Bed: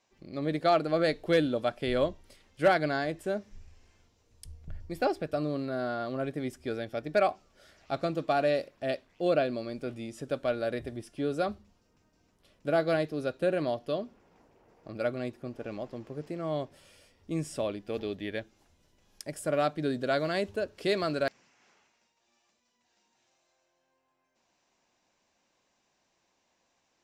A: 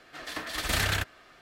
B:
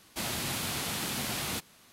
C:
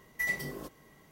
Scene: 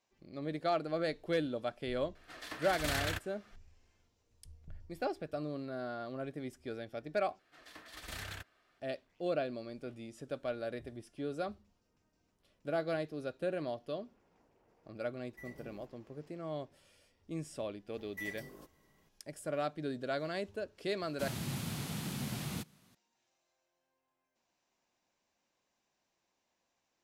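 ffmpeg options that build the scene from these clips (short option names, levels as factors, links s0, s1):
-filter_complex "[1:a]asplit=2[s0][s1];[3:a]asplit=2[s2][s3];[0:a]volume=0.398[s4];[s2]tiltshelf=f=800:g=7[s5];[2:a]equalizer=f=150:t=o:w=1.8:g=14.5[s6];[s4]asplit=2[s7][s8];[s7]atrim=end=7.394[s9];[s1]atrim=end=1.41,asetpts=PTS-STARTPTS,volume=0.141[s10];[s8]atrim=start=8.796[s11];[s0]atrim=end=1.41,asetpts=PTS-STARTPTS,volume=0.376,afade=t=in:d=0.004:c=hsin,afade=t=out:st=1.406:d=0.004:c=hsin,adelay=2150[s12];[s5]atrim=end=1.11,asetpts=PTS-STARTPTS,volume=0.141,afade=t=in:d=0.004:c=hsin,afade=t=out:st=1.106:d=0.004:c=hsin,adelay=15180[s13];[s3]atrim=end=1.11,asetpts=PTS-STARTPTS,volume=0.266,afade=t=in:d=0.004:c=hsin,afade=t=out:st=1.106:d=0.004:c=hsin,adelay=17980[s14];[s6]atrim=end=1.92,asetpts=PTS-STARTPTS,volume=0.282,afade=t=in:d=0.004:c=hsin,afade=t=out:st=1.916:d=0.004:c=hsin,adelay=21030[s15];[s9][s10]acrossfade=d=0.004:c1=hsin:c2=hsin[s16];[s16][s11]acrossfade=d=0.004:c1=hsin:c2=hsin[s17];[s17][s12][s13][s14][s15]amix=inputs=5:normalize=0"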